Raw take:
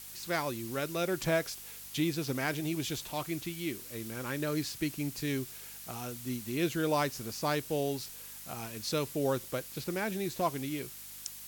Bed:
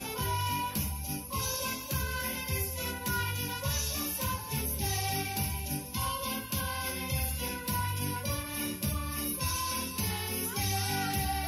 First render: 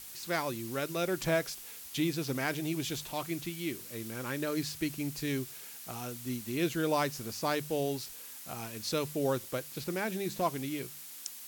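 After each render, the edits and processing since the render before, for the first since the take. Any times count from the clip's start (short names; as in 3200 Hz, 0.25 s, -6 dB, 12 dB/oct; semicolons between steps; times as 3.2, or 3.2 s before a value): de-hum 50 Hz, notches 4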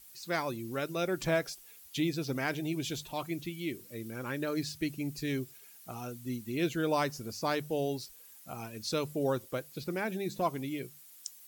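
denoiser 12 dB, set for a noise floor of -47 dBFS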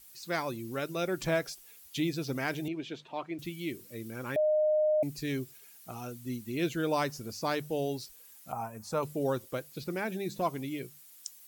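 2.68–3.39 BPF 250–2500 Hz; 4.36–5.03 bleep 613 Hz -23 dBFS; 8.52–9.03 EQ curve 220 Hz 0 dB, 340 Hz -8 dB, 850 Hz +12 dB, 3700 Hz -16 dB, 7400 Hz -3 dB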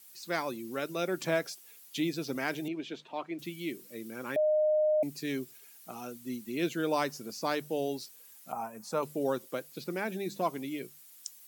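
HPF 170 Hz 24 dB/oct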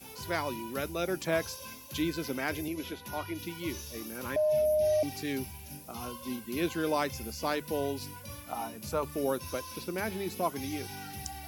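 add bed -11 dB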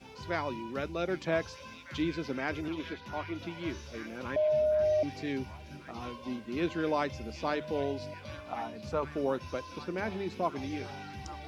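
air absorption 150 m; delay with a stepping band-pass 0.777 s, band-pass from 3100 Hz, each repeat -0.7 oct, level -8 dB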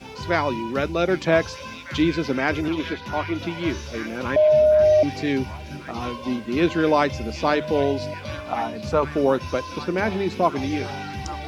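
gain +11.5 dB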